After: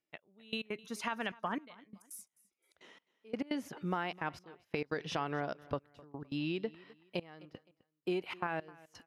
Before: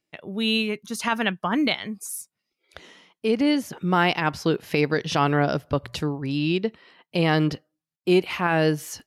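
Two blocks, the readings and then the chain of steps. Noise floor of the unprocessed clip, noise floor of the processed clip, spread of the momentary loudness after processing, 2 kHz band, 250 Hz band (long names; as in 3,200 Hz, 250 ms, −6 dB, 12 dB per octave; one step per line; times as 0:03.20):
−84 dBFS, below −85 dBFS, 17 LU, −15.0 dB, −16.5 dB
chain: low-shelf EQ 290 Hz −8.5 dB
notch filter 4,400 Hz, Q 25
gate pattern "xx....x.xxxxxxx." 171 BPM −24 dB
downward compressor 10 to 1, threshold −25 dBFS, peak gain reduction 9.5 dB
high-shelf EQ 3,400 Hz −10 dB
on a send: repeating echo 258 ms, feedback 31%, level −21.5 dB
on the sum: level −5.5 dB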